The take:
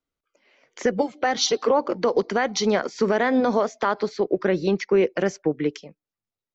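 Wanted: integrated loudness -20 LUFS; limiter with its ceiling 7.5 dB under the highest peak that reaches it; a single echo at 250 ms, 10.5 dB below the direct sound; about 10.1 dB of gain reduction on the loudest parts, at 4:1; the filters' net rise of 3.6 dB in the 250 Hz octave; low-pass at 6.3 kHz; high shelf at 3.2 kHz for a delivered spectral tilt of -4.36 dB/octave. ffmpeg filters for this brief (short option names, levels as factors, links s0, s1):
-af "lowpass=6300,equalizer=f=250:t=o:g=4.5,highshelf=f=3200:g=3.5,acompressor=threshold=0.0501:ratio=4,alimiter=limit=0.0944:level=0:latency=1,aecho=1:1:250:0.299,volume=3.76"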